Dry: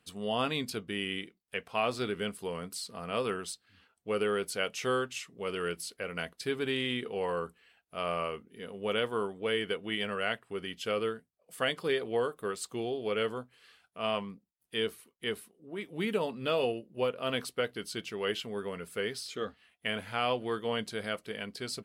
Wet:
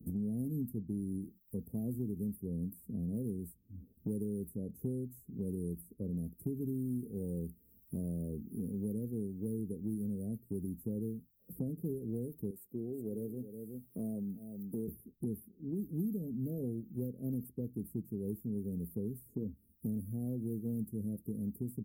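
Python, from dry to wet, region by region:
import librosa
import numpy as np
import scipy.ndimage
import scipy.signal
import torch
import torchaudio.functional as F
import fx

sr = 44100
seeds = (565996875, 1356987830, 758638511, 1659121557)

y = fx.chain(x, sr, fx.highpass(hz=690.0, slope=6),
    fx.echo_single(ms=368, db=-14.5), at=(12.5, 14.88))
y = scipy.signal.sosfilt(scipy.signal.cheby2(4, 80, [1100.0, 4300.0], 'bandstop', fs=sr, output='sos'), y)
y = fx.peak_eq(y, sr, hz=160.0, db=-7.0, octaves=1.9)
y = fx.band_squash(y, sr, depth_pct=100)
y = F.gain(torch.from_numpy(y), 11.5).numpy()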